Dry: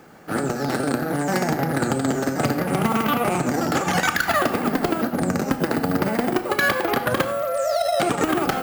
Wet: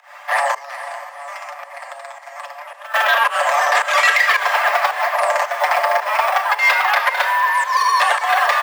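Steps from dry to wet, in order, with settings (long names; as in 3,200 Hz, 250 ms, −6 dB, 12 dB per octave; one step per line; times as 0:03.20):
high-pass filter 60 Hz
comb filter 6.6 ms, depth 53%
0:00.58–0:02.94: downward compressor 16 to 1, threshold −36 dBFS, peak gain reduction 21.5 dB
mid-hump overdrive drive 12 dB, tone 3,100 Hz, clips at −10 dBFS
fake sidechain pumping 110 BPM, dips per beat 1, −21 dB, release 176 ms
frequency shifter +420 Hz
feedback delay with all-pass diffusion 468 ms, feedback 48%, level −13 dB
level +4 dB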